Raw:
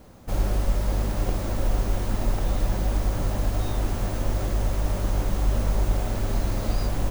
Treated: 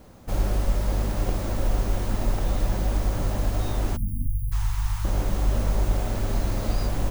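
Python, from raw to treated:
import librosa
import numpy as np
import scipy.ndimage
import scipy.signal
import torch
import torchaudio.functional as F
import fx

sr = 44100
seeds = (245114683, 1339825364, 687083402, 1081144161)

y = fx.ellip_bandstop(x, sr, low_hz=140.0, high_hz=900.0, order=3, stop_db=40, at=(4.26, 5.05))
y = fx.spec_erase(y, sr, start_s=3.97, length_s=0.55, low_hz=290.0, high_hz=9000.0)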